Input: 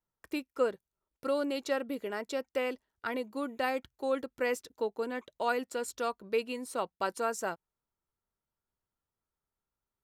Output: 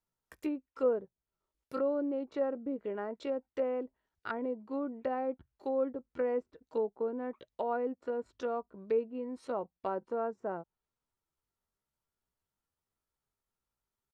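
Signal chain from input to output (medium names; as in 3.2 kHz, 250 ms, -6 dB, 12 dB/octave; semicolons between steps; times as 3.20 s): low-pass that closes with the level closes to 750 Hz, closed at -31 dBFS; tempo 0.71×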